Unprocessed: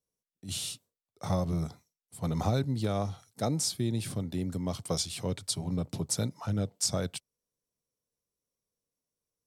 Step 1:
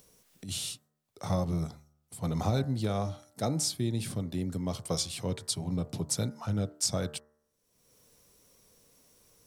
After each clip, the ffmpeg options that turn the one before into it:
-af "bandreject=f=74.97:t=h:w=4,bandreject=f=149.94:t=h:w=4,bandreject=f=224.91:t=h:w=4,bandreject=f=299.88:t=h:w=4,bandreject=f=374.85:t=h:w=4,bandreject=f=449.82:t=h:w=4,bandreject=f=524.79:t=h:w=4,bandreject=f=599.76:t=h:w=4,bandreject=f=674.73:t=h:w=4,bandreject=f=749.7:t=h:w=4,bandreject=f=824.67:t=h:w=4,bandreject=f=899.64:t=h:w=4,bandreject=f=974.61:t=h:w=4,bandreject=f=1.04958k:t=h:w=4,bandreject=f=1.12455k:t=h:w=4,bandreject=f=1.19952k:t=h:w=4,bandreject=f=1.27449k:t=h:w=4,bandreject=f=1.34946k:t=h:w=4,bandreject=f=1.42443k:t=h:w=4,bandreject=f=1.4994k:t=h:w=4,bandreject=f=1.57437k:t=h:w=4,bandreject=f=1.64934k:t=h:w=4,bandreject=f=1.72431k:t=h:w=4,bandreject=f=1.79928k:t=h:w=4,bandreject=f=1.87425k:t=h:w=4,bandreject=f=1.94922k:t=h:w=4,acompressor=mode=upward:threshold=-41dB:ratio=2.5"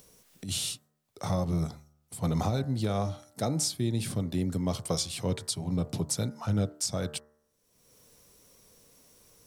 -af "alimiter=limit=-22dB:level=0:latency=1:release=359,volume=3.5dB"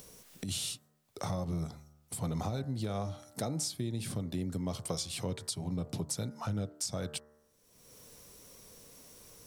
-af "acompressor=threshold=-42dB:ratio=2.5,volume=4.5dB"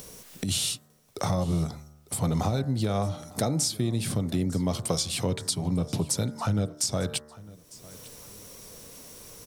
-af "aecho=1:1:901|1802:0.0891|0.0294,volume=8.5dB"

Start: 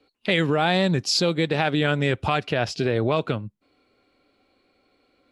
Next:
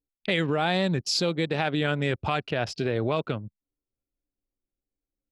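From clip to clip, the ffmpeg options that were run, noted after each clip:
-af "anlmdn=3.98,volume=-4dB"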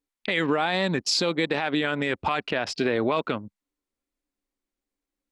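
-af "equalizer=f=125:t=o:w=1:g=-6,equalizer=f=250:t=o:w=1:g=8,equalizer=f=500:t=o:w=1:g=3,equalizer=f=1k:t=o:w=1:g=9,equalizer=f=2k:t=o:w=1:g=8,equalizer=f=4k:t=o:w=1:g=5,equalizer=f=8k:t=o:w=1:g=6,alimiter=limit=-11dB:level=0:latency=1:release=48,volume=-2.5dB"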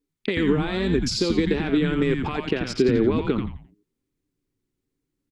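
-filter_complex "[0:a]acompressor=threshold=-25dB:ratio=6,lowshelf=f=500:t=q:w=3:g=6.5,asplit=5[a][b][c][d][e];[b]adelay=87,afreqshift=-130,volume=-4.5dB[f];[c]adelay=174,afreqshift=-260,volume=-14.7dB[g];[d]adelay=261,afreqshift=-390,volume=-24.8dB[h];[e]adelay=348,afreqshift=-520,volume=-35dB[i];[a][f][g][h][i]amix=inputs=5:normalize=0"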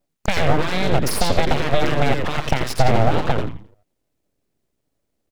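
-af "aeval=exprs='abs(val(0))':c=same,volume=6.5dB"

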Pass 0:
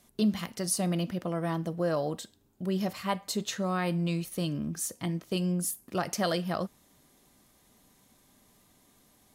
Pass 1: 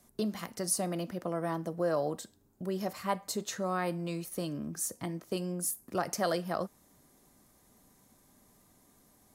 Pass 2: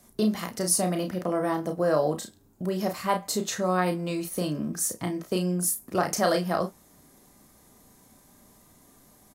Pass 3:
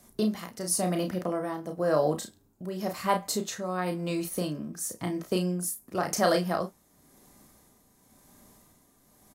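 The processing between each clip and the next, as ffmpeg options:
-filter_complex "[0:a]equalizer=f=3.1k:t=o:w=1.1:g=-8,acrossover=split=280[a][b];[a]acompressor=threshold=-41dB:ratio=6[c];[c][b]amix=inputs=2:normalize=0"
-af "aecho=1:1:33|51:0.501|0.158,volume=6dB"
-af "tremolo=f=0.95:d=0.57"

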